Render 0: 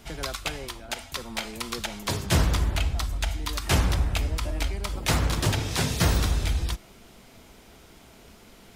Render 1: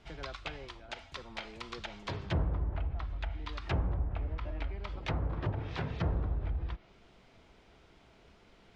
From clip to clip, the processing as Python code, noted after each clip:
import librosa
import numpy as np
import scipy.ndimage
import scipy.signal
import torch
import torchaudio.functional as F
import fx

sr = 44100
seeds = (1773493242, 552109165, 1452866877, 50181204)

y = scipy.signal.sosfilt(scipy.signal.butter(2, 3900.0, 'lowpass', fs=sr, output='sos'), x)
y = fx.peak_eq(y, sr, hz=230.0, db=-5.5, octaves=0.35)
y = fx.env_lowpass_down(y, sr, base_hz=850.0, full_db=-20.0)
y = y * librosa.db_to_amplitude(-8.5)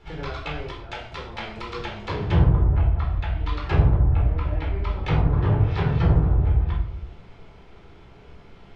y = fx.high_shelf(x, sr, hz=4000.0, db=-8.5)
y = fx.room_shoebox(y, sr, seeds[0], volume_m3=800.0, walls='furnished', distance_m=4.2)
y = y * librosa.db_to_amplitude(5.0)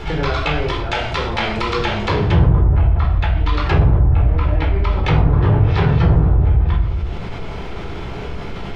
y = fx.env_flatten(x, sr, amount_pct=50)
y = y * librosa.db_to_amplitude(3.0)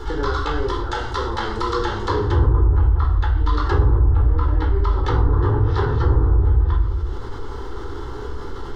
y = fx.fixed_phaser(x, sr, hz=650.0, stages=6)